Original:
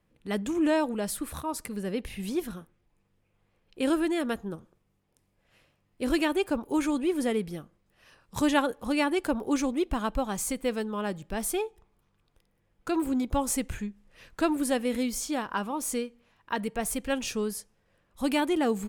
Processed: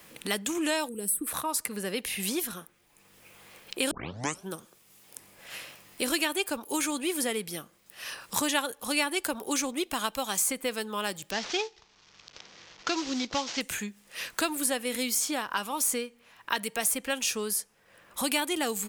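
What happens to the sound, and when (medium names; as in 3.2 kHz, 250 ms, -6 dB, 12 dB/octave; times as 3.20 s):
0.89–1.27 s: time-frequency box 500–7700 Hz -19 dB
3.91 s: tape start 0.58 s
11.31–13.61 s: CVSD coder 32 kbps
whole clip: tilt EQ +3.5 dB/octave; three bands compressed up and down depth 70%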